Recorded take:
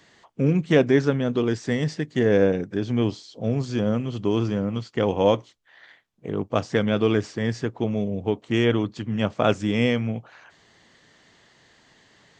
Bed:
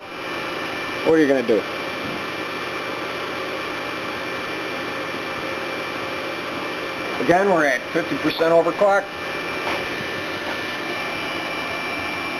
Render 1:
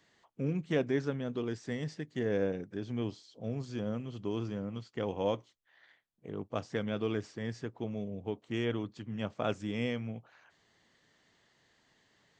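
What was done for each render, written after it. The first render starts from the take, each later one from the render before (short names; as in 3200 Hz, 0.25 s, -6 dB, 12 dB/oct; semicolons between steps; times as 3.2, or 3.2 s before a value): gain -12.5 dB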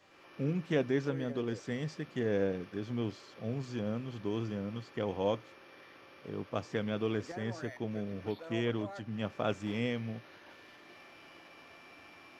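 add bed -29 dB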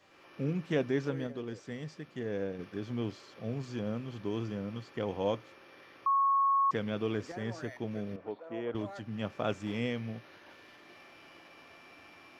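1.27–2.59 gain -4.5 dB; 6.06–6.71 bleep 1100 Hz -23.5 dBFS; 8.16–8.75 band-pass 660 Hz, Q 0.91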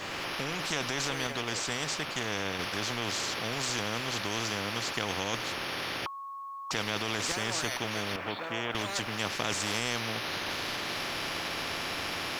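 in parallel at +0.5 dB: negative-ratio compressor -35 dBFS; on the sum: spectral compressor 4:1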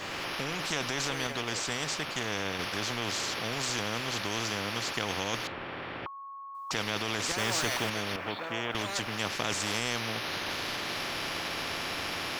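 5.47–6.55 air absorption 480 m; 7.38–7.9 zero-crossing step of -34 dBFS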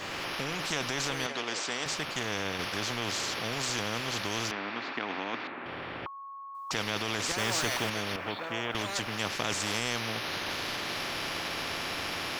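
1.26–1.86 BPF 230–7500 Hz; 4.51–5.66 speaker cabinet 260–3500 Hz, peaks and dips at 260 Hz +7 dB, 510 Hz -6 dB, 3100 Hz -7 dB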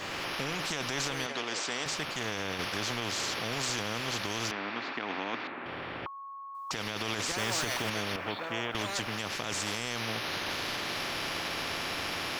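limiter -21 dBFS, peak gain reduction 7 dB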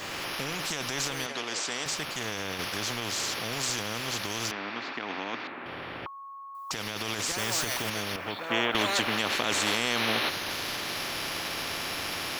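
8.49–10.29 spectral gain 200–4500 Hz +7 dB; high shelf 8100 Hz +10.5 dB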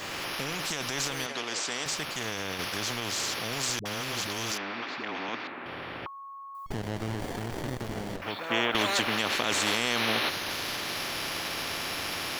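3.79–5.29 dispersion highs, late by 65 ms, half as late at 430 Hz; 6.66–8.22 running maximum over 33 samples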